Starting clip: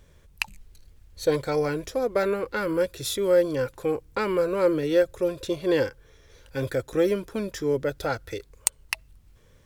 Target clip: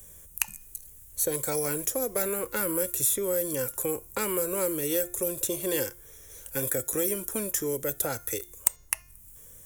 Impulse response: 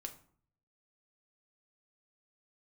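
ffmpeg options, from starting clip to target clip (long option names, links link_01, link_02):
-filter_complex "[0:a]aexciter=amount=12:drive=7.3:freq=6800,acrossover=split=110|360|2400[link_01][link_02][link_03][link_04];[link_01]acompressor=threshold=-52dB:ratio=4[link_05];[link_02]acompressor=threshold=-36dB:ratio=4[link_06];[link_03]acompressor=threshold=-31dB:ratio=4[link_07];[link_04]acompressor=threshold=-25dB:ratio=4[link_08];[link_05][link_06][link_07][link_08]amix=inputs=4:normalize=0,bandreject=frequency=353.3:width_type=h:width=4,bandreject=frequency=706.6:width_type=h:width=4,bandreject=frequency=1059.9:width_type=h:width=4,bandreject=frequency=1413.2:width_type=h:width=4,bandreject=frequency=1766.5:width_type=h:width=4,bandreject=frequency=2119.8:width_type=h:width=4,bandreject=frequency=2473.1:width_type=h:width=4,bandreject=frequency=2826.4:width_type=h:width=4,bandreject=frequency=3179.7:width_type=h:width=4,bandreject=frequency=3533:width_type=h:width=4,bandreject=frequency=3886.3:width_type=h:width=4,bandreject=frequency=4239.6:width_type=h:width=4,bandreject=frequency=4592.9:width_type=h:width=4,bandreject=frequency=4946.2:width_type=h:width=4,bandreject=frequency=5299.5:width_type=h:width=4,bandreject=frequency=5652.8:width_type=h:width=4,bandreject=frequency=6006.1:width_type=h:width=4,bandreject=frequency=6359.4:width_type=h:width=4,bandreject=frequency=6712.7:width_type=h:width=4,asplit=2[link_09][link_10];[link_10]equalizer=frequency=3200:width=1.5:gain=6[link_11];[1:a]atrim=start_sample=2205,atrim=end_sample=3969[link_12];[link_11][link_12]afir=irnorm=-1:irlink=0,volume=-10dB[link_13];[link_09][link_13]amix=inputs=2:normalize=0,volume=-2dB"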